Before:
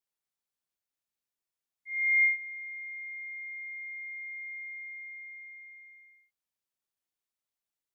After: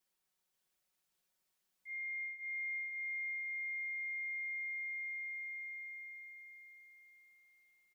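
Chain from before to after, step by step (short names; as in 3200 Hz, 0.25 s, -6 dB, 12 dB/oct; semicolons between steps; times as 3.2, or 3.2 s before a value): comb 5.4 ms, depth 95%; compressor, threshold -45 dBFS, peak gain reduction 13.5 dB; feedback echo 0.534 s, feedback 44%, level -4 dB; gain +3.5 dB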